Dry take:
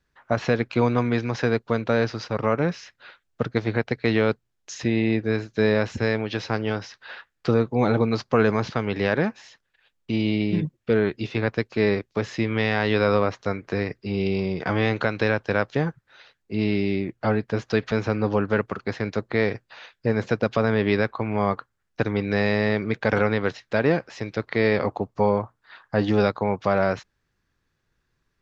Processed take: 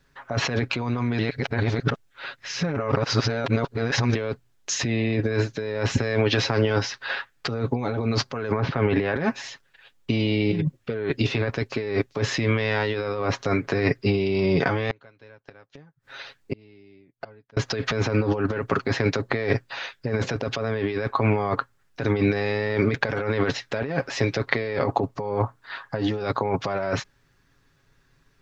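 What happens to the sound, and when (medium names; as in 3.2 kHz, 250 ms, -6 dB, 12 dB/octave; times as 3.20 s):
1.19–4.15 s: reverse
8.51–9.15 s: low-pass 1.9 kHz -> 3.1 kHz
14.90–17.57 s: inverted gate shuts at -25 dBFS, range -38 dB
whole clip: comb 7.3 ms, depth 49%; compressor with a negative ratio -28 dBFS, ratio -1; trim +4 dB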